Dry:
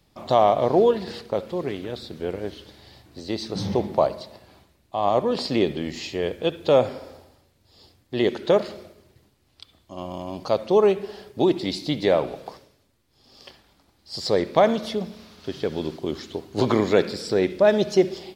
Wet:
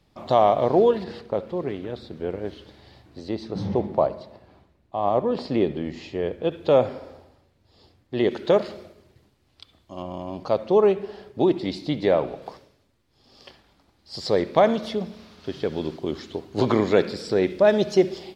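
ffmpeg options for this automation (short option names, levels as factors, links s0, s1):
-af "asetnsamples=n=441:p=0,asendcmd='1.04 lowpass f 1800;2.45 lowpass f 2800;3.29 lowpass f 1300;6.51 lowpass f 2500;8.31 lowpass f 5300;10.02 lowpass f 2300;12.42 lowpass f 4600;17.47 lowpass f 7100',lowpass=f=4100:p=1"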